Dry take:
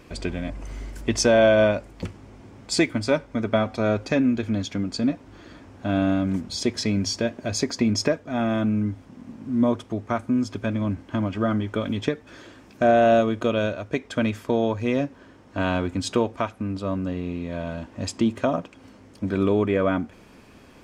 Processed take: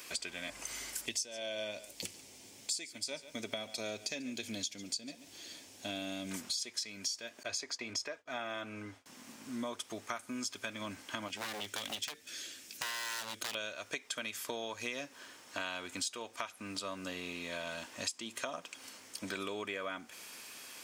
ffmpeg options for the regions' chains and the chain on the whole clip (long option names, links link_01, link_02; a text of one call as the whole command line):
ffmpeg -i in.wav -filter_complex "[0:a]asettb=1/sr,asplit=3[link_01][link_02][link_03];[link_01]atrim=end=1.064[link_04];[link_02]atrim=start=1.06:end=6.31,asetpts=PTS-STARTPTS,afade=type=in:duration=0.004:curve=qsin,afade=type=out:start_time=5.246:duration=0.004:curve=qsin,equalizer=frequency=1300:width_type=o:width=1.2:gain=-14.5,aecho=1:1:140:0.1,atrim=end_sample=231525[link_05];[link_03]atrim=start=6.306[link_06];[link_04][link_05]acrossfade=duration=0.004:curve1=hsin:curve2=qsin[link_07];[link_07][link_06]acrossfade=duration=0.004:curve1=qsin:curve2=hsin,asettb=1/sr,asplit=3[link_08][link_09][link_10];[link_08]atrim=end=7.434[link_11];[link_09]atrim=start=7.43:end=9.06,asetpts=PTS-STARTPTS,afade=type=in:duration=0.004:curve=qsin,afade=type=out:start_time=1.626:duration=0.004:curve=qsin,lowpass=frequency=2200:poles=1,agate=range=-33dB:threshold=-38dB:ratio=3:release=100:detection=peak,equalizer=frequency=190:width=2.1:gain=-11[link_12];[link_10]atrim=start=9.056[link_13];[link_11][link_12]acrossfade=duration=0.004:curve1=hsin:curve2=qsin[link_14];[link_14][link_13]acrossfade=duration=0.004:curve1=qsin:curve2=hsin,asettb=1/sr,asplit=3[link_15][link_16][link_17];[link_15]atrim=end=11.284[link_18];[link_16]atrim=start=11.28:end=13.55,asetpts=PTS-STARTPTS,afade=type=in:duration=0.004:curve=qsin,afade=type=out:start_time=2.266:duration=0.004:curve=qsin,equalizer=frequency=1000:width=1:gain=-14.5,aeval=exprs='0.0501*(abs(mod(val(0)/0.0501+3,4)-2)-1)':channel_layout=same[link_19];[link_17]atrim=start=13.546[link_20];[link_18][link_19]acrossfade=duration=0.004:curve1=hsin:curve2=qsin[link_21];[link_21][link_20]acrossfade=duration=0.004:curve1=qsin:curve2=hsin,aderivative,acompressor=threshold=-50dB:ratio=8,volume=14dB" out.wav